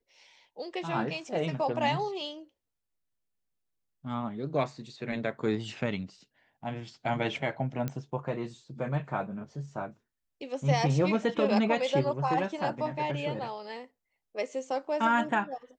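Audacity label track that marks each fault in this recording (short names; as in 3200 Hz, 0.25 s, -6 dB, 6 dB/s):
7.880000	7.880000	pop -19 dBFS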